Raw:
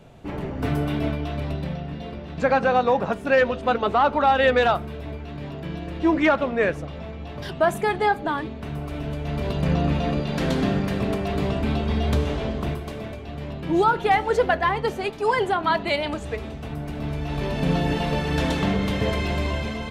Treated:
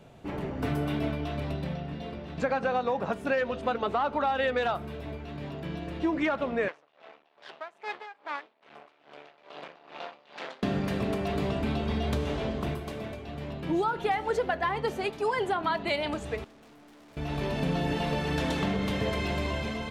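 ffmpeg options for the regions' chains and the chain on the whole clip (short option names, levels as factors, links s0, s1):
-filter_complex "[0:a]asettb=1/sr,asplit=3[s0][s1][s2];[s0]atrim=end=6.684[s3];[s1]atrim=start=6.68:end=10.63,asetpts=PTS-STARTPTS,afade=t=in:d=0.004:c=qsin,afade=t=out:st=3.946:d=0.004:c=qsin,aeval=exprs='max(val(0),0)':c=same,highpass=650,lowpass=4200,aeval=exprs='val(0)*pow(10,-19*(0.5-0.5*cos(2*PI*2.4*n/s))/20)':c=same[s4];[s2]atrim=start=10.626[s5];[s3][s4]acrossfade=d=0.004:c1=hsin:c2=qsin[s6];[s6][s5]acrossfade=d=0.004:c1=qsin:c2=hsin,asettb=1/sr,asplit=3[s7][s8][s9];[s7]atrim=end=16.444[s10];[s8]atrim=start=16.44:end=17.17,asetpts=PTS-STARTPTS,afade=t=in:d=0.004:c=qsin,afade=t=out:st=0.726:d=0.004:c=qsin,lowshelf=f=180:t=q:w=1.5:g=-11.5,aeval=exprs='(tanh(316*val(0)+0.3)-tanh(0.3))/316':c=same[s11];[s9]atrim=start=17.166[s12];[s10][s11]acrossfade=d=0.004:c1=hsin:c2=qsin[s13];[s13][s12]acrossfade=d=0.004:c1=qsin:c2=hsin,lowshelf=f=80:g=-7,acompressor=threshold=0.0891:ratio=6,volume=0.708"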